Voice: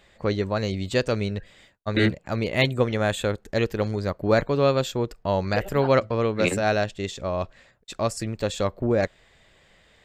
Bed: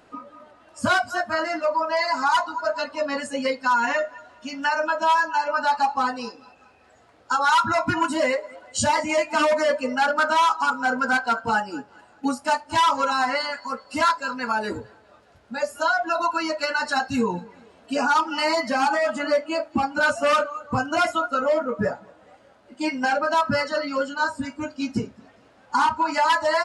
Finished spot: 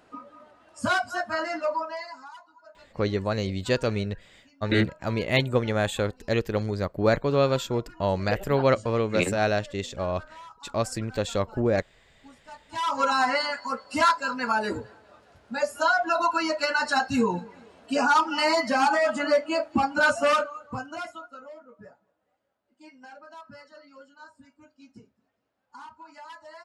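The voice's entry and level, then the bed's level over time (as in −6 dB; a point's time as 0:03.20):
2.75 s, −1.5 dB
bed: 0:01.74 −4 dB
0:02.37 −27 dB
0:12.44 −27 dB
0:13.03 −0.5 dB
0:20.22 −0.5 dB
0:21.59 −24.5 dB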